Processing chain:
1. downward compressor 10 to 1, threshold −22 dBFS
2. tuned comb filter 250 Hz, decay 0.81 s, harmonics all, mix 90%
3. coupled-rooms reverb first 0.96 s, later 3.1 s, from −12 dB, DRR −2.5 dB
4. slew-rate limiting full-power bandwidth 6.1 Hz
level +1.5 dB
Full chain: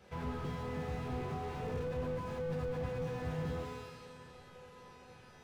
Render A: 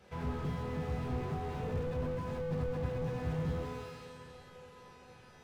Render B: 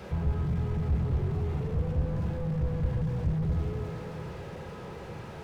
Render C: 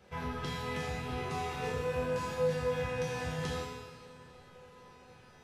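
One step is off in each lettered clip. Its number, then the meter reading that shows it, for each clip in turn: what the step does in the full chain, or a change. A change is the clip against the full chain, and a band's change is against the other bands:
1, average gain reduction 2.5 dB
2, 125 Hz band +11.5 dB
4, change in crest factor +2.5 dB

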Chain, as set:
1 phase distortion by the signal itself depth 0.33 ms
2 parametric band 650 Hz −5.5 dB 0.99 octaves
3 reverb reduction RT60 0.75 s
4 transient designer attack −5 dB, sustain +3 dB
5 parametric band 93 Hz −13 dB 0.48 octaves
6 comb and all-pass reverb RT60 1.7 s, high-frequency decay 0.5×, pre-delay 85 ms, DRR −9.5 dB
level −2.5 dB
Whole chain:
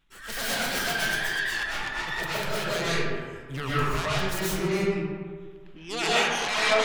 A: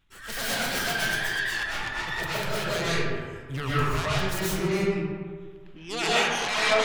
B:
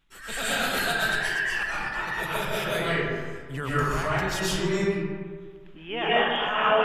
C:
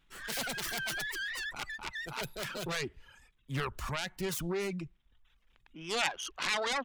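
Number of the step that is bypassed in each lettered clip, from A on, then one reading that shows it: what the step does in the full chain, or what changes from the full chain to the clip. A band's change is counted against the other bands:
5, 125 Hz band +2.0 dB
1, 8 kHz band −3.5 dB
6, change in momentary loudness spread −5 LU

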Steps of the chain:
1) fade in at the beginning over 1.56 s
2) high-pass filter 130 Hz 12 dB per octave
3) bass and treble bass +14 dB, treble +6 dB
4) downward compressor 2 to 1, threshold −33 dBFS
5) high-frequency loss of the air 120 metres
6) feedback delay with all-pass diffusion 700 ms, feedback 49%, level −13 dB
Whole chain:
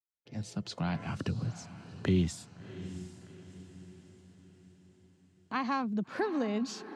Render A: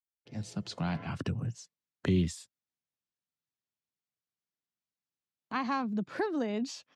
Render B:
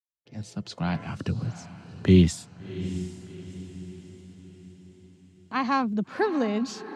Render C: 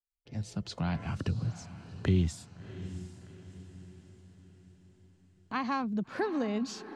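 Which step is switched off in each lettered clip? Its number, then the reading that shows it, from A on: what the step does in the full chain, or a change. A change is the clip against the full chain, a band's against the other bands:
6, echo-to-direct ratio −12.0 dB to none audible
4, average gain reduction 4.5 dB
2, 125 Hz band +3.0 dB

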